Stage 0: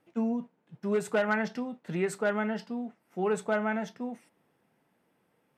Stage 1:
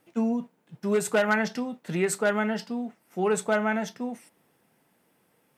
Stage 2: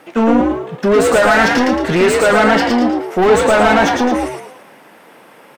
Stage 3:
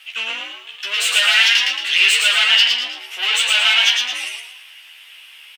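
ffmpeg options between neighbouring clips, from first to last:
-af "highshelf=f=4.5k:g=10.5,volume=3.5dB"
-filter_complex "[0:a]asplit=2[a][b];[b]highpass=f=720:p=1,volume=29dB,asoftclip=type=tanh:threshold=-10dB[c];[a][c]amix=inputs=2:normalize=0,lowpass=f=1.6k:p=1,volume=-6dB,asplit=6[d][e][f][g][h][i];[e]adelay=112,afreqshift=67,volume=-3dB[j];[f]adelay=224,afreqshift=134,volume=-11dB[k];[g]adelay=336,afreqshift=201,volume=-18.9dB[l];[h]adelay=448,afreqshift=268,volume=-26.9dB[m];[i]adelay=560,afreqshift=335,volume=-34.8dB[n];[d][j][k][l][m][n]amix=inputs=6:normalize=0,volume=6dB"
-filter_complex "[0:a]highpass=f=2.9k:t=q:w=5.3,asplit=2[a][b];[b]adelay=13,volume=-3dB[c];[a][c]amix=inputs=2:normalize=0"

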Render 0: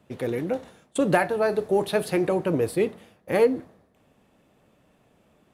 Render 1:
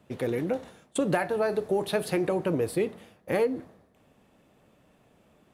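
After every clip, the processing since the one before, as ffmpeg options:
-af "acompressor=threshold=-24dB:ratio=2.5"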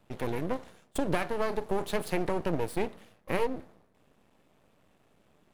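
-af "aeval=exprs='max(val(0),0)':c=same"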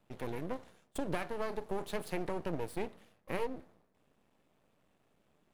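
-af "bandreject=f=50:t=h:w=6,bandreject=f=100:t=h:w=6,volume=-7dB"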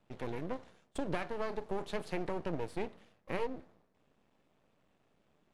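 -af "lowpass=7.1k"

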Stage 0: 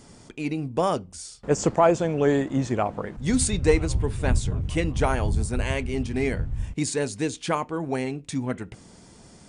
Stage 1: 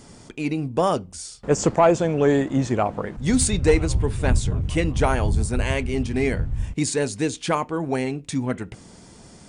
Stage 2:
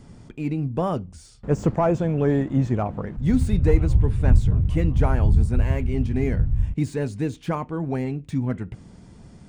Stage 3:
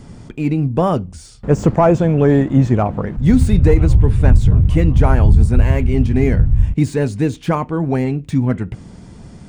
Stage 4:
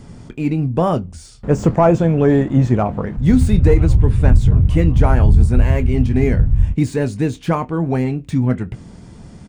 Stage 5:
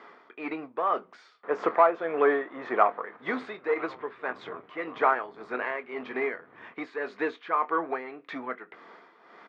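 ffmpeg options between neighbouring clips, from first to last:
-af "acontrast=74,volume=-3.5dB"
-filter_complex "[0:a]bass=f=250:g=10,treble=f=4k:g=-8,acrossover=split=1800[a][b];[b]asoftclip=type=tanh:threshold=-36.5dB[c];[a][c]amix=inputs=2:normalize=0,volume=-5.5dB"
-af "alimiter=level_in=9.5dB:limit=-1dB:release=50:level=0:latency=1,volume=-1dB"
-filter_complex "[0:a]asplit=2[a][b];[b]adelay=24,volume=-13.5dB[c];[a][c]amix=inputs=2:normalize=0,volume=-1dB"
-filter_complex "[0:a]asplit=2[a][b];[b]asoftclip=type=tanh:threshold=-18.5dB,volume=-7dB[c];[a][c]amix=inputs=2:normalize=0,tremolo=f=1.8:d=0.65,highpass=f=480:w=0.5412,highpass=f=480:w=1.3066,equalizer=f=560:t=q:w=4:g=-8,equalizer=f=820:t=q:w=4:g=-4,equalizer=f=1.2k:t=q:w=4:g=7,equalizer=f=1.9k:t=q:w=4:g=3,equalizer=f=2.8k:t=q:w=4:g=-8,lowpass=f=3.1k:w=0.5412,lowpass=f=3.1k:w=1.3066"

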